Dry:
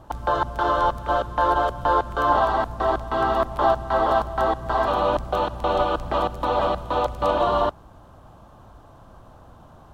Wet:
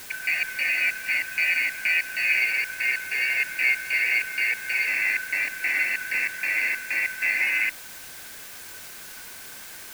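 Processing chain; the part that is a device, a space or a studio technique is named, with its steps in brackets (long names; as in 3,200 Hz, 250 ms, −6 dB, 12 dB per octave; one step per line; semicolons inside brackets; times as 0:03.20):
split-band scrambled radio (band-splitting scrambler in four parts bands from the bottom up 3142; band-pass filter 350–3,300 Hz; white noise bed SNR 15 dB)
level −2.5 dB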